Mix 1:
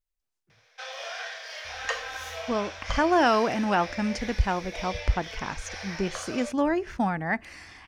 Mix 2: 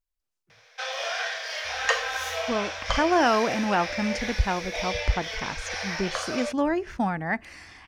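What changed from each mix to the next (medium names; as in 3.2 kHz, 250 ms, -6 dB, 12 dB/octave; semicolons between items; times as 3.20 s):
background +6.5 dB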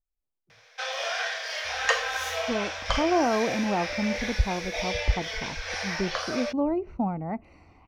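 speech: add boxcar filter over 26 samples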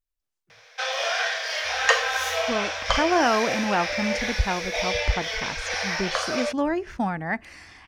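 speech: remove boxcar filter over 26 samples; background +4.5 dB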